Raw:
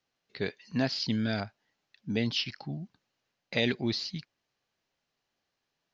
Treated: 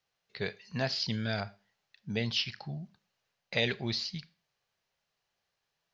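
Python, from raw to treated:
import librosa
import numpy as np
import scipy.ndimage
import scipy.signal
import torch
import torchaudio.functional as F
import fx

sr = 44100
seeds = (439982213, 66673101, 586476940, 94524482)

y = fx.peak_eq(x, sr, hz=280.0, db=-13.0, octaves=0.56)
y = fx.rev_schroeder(y, sr, rt60_s=0.35, comb_ms=27, drr_db=17.0)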